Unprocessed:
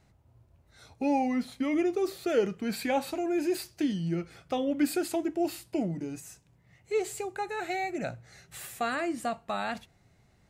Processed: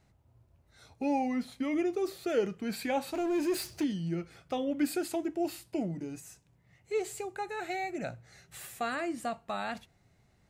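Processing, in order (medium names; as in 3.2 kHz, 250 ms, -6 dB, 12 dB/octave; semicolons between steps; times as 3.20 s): 3.14–3.84 s: power-law waveshaper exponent 0.7; trim -3 dB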